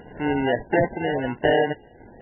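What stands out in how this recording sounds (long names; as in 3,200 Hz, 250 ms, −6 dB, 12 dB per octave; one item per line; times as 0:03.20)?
aliases and images of a low sample rate 1,200 Hz, jitter 0%
tremolo saw down 1.5 Hz, depth 40%
MP3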